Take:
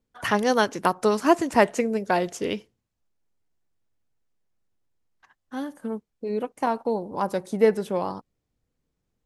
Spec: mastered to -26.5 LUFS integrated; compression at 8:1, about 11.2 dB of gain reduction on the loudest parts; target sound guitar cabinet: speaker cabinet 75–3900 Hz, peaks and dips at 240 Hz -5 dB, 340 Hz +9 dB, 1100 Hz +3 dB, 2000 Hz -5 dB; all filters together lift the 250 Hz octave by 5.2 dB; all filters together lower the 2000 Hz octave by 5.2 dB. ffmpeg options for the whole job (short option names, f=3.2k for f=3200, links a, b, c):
-af "equalizer=f=250:t=o:g=4,equalizer=f=2k:t=o:g=-5,acompressor=threshold=-23dB:ratio=8,highpass=75,equalizer=f=240:t=q:w=4:g=-5,equalizer=f=340:t=q:w=4:g=9,equalizer=f=1.1k:t=q:w=4:g=3,equalizer=f=2k:t=q:w=4:g=-5,lowpass=f=3.9k:w=0.5412,lowpass=f=3.9k:w=1.3066,volume=2dB"